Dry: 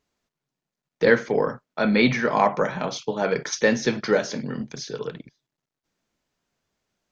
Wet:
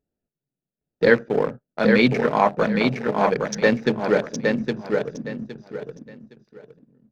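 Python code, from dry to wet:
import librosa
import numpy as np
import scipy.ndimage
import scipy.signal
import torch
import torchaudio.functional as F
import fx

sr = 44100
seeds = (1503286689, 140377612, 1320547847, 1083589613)

p1 = fx.wiener(x, sr, points=41)
p2 = np.sign(p1) * np.maximum(np.abs(p1) - 10.0 ** (-40.0 / 20.0), 0.0)
p3 = p1 + (p2 * librosa.db_to_amplitude(-7.5))
p4 = fx.echo_feedback(p3, sr, ms=814, feedback_pct=25, wet_db=-4)
y = p4 * librosa.db_to_amplitude(-1.0)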